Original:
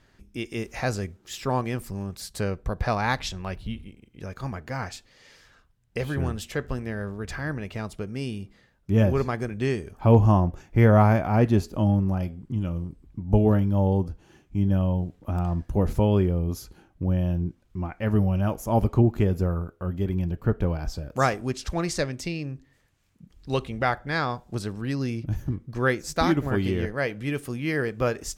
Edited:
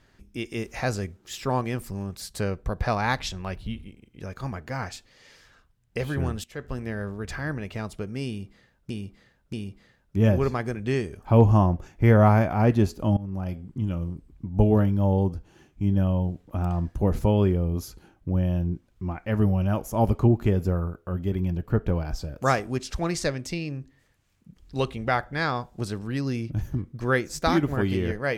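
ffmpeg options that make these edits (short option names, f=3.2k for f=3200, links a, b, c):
-filter_complex "[0:a]asplit=5[a][b][c][d][e];[a]atrim=end=6.44,asetpts=PTS-STARTPTS,afade=t=out:st=6.436:d=0.004:c=hsin:silence=0.149624[f];[b]atrim=start=6.44:end=8.902,asetpts=PTS-STARTPTS,afade=t=in:d=0.41:silence=0.149624[g];[c]atrim=start=8.268:end=8.902[h];[d]atrim=start=8.268:end=11.91,asetpts=PTS-STARTPTS,afade=t=out:st=3.638:d=0.004:c=hsin:silence=0.105925[i];[e]atrim=start=11.91,asetpts=PTS-STARTPTS,afade=t=in:d=0.44:silence=0.105925[j];[f][g]concat=n=2:v=0:a=1[k];[k][h]acrossfade=d=0.004:c1=hsin:c2=hsin[l];[i][j]concat=n=2:v=0:a=1[m];[l][m]acrossfade=d=0.004:c1=hsin:c2=hsin"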